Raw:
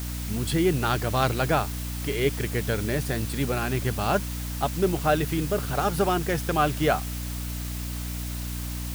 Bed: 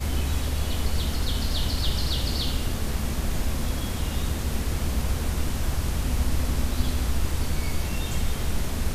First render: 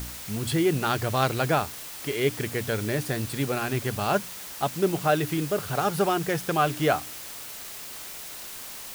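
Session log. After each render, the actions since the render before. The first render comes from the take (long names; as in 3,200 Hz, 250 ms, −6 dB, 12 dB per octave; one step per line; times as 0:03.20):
hum removal 60 Hz, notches 5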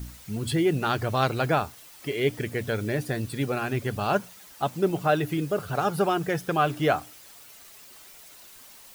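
broadband denoise 11 dB, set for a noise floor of −39 dBFS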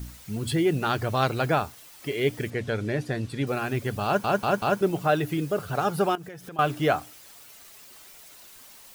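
0:02.50–0:03.47: high-frequency loss of the air 55 metres
0:04.05: stutter in place 0.19 s, 4 plays
0:06.15–0:06.59: downward compressor 10 to 1, threshold −37 dBFS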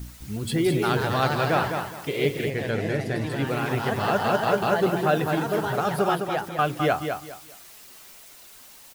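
delay with pitch and tempo change per echo 222 ms, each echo +2 semitones, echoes 3, each echo −6 dB
on a send: repeating echo 207 ms, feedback 25%, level −6.5 dB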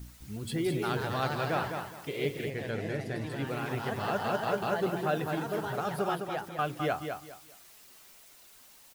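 level −8 dB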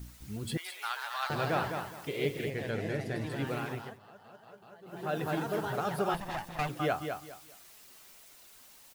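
0:00.57–0:01.30: inverse Chebyshev high-pass filter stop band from 200 Hz, stop band 70 dB
0:03.55–0:05.29: duck −23.5 dB, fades 0.44 s
0:06.14–0:06.69: lower of the sound and its delayed copy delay 1.1 ms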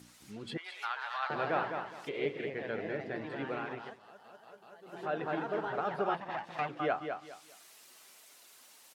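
treble cut that deepens with the level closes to 2,500 Hz, closed at −32.5 dBFS
Bessel high-pass filter 300 Hz, order 2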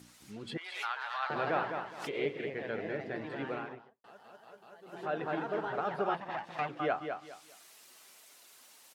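0:00.61–0:02.33: background raised ahead of every attack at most 80 dB per second
0:03.49–0:04.04: fade out and dull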